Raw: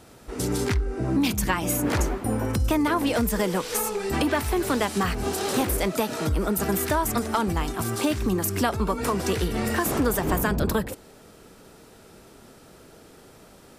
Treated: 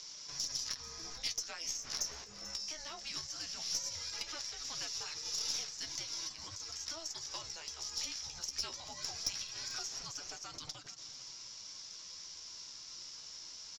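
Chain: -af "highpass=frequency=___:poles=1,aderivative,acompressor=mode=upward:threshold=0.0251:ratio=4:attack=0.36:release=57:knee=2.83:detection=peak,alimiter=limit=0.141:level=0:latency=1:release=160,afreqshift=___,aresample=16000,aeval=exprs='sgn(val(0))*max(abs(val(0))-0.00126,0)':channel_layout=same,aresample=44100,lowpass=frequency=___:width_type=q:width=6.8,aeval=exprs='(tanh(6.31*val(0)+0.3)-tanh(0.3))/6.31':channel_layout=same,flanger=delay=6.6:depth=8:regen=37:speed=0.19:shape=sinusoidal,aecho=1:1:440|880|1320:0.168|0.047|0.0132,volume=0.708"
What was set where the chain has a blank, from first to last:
260, -320, 5500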